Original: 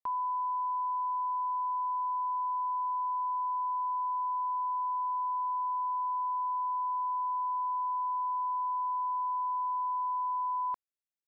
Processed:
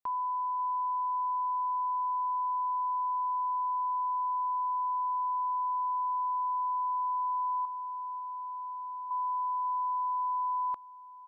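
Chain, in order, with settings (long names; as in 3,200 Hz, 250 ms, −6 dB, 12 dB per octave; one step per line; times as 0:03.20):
0:07.65–0:09.11: parametric band 960 Hz −9 dB 0.37 octaves
repeating echo 540 ms, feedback 28%, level −19.5 dB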